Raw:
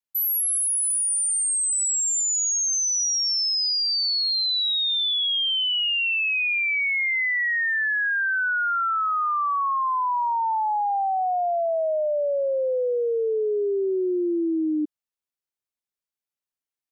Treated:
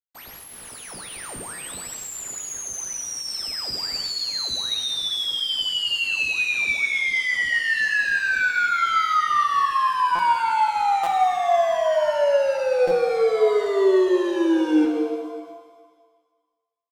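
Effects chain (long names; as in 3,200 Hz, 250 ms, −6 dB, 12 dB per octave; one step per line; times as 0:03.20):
0:07.22–0:07.80: bass and treble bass −10 dB, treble −6 dB
log-companded quantiser 4 bits
head-to-tape spacing loss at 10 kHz 22 dB
double-tracking delay 16 ms −7 dB
repeating echo 126 ms, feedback 53%, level −17 dB
buffer that repeats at 0:01.54/0:10.15/0:11.03/0:12.87/0:15.47, samples 256, times 6
reverb with rising layers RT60 1.5 s, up +7 semitones, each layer −8 dB, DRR 4.5 dB
level +2 dB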